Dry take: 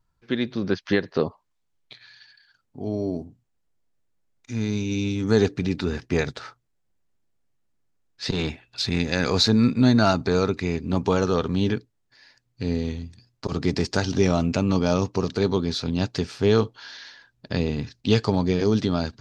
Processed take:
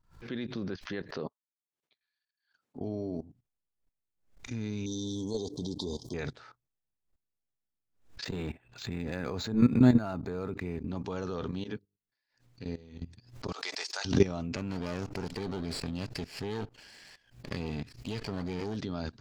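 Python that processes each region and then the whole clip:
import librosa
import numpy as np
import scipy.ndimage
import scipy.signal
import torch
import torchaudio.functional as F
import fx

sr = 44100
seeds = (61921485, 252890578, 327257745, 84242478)

y = fx.chain(x, sr, fx.highpass(hz=230.0, slope=12),
    fx.upward_expand(threshold_db=-56.0, expansion=2.5), at=(1.26, 2.8))
y = fx.chain(y, sr, fx.brickwall_bandstop(low_hz=1100.0, high_hz=3100.0),
    fx.bass_treble(bass_db=-6, treble_db=11), at=(4.86, 6.14))
y = fx.chain(y, sr, fx.high_shelf(hz=3900.0, db=-11.5),
    fx.resample_linear(factor=4), at=(8.24, 10.88))
y = fx.chain(y, sr, fx.low_shelf(hz=170.0, db=-3.5),
    fx.hum_notches(base_hz=50, count=9),
    fx.upward_expand(threshold_db=-37.0, expansion=2.5), at=(11.51, 13.01))
y = fx.chain(y, sr, fx.highpass(hz=690.0, slope=24),
    fx.high_shelf(hz=3400.0, db=10.5), at=(13.52, 14.05))
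y = fx.chain(y, sr, fx.lower_of_two(delay_ms=0.41),
    fx.low_shelf(hz=380.0, db=-5.0), at=(14.56, 18.77))
y = fx.level_steps(y, sr, step_db=17)
y = fx.high_shelf(y, sr, hz=4600.0, db=-5.0)
y = fx.pre_swell(y, sr, db_per_s=130.0)
y = y * librosa.db_to_amplitude(-1.0)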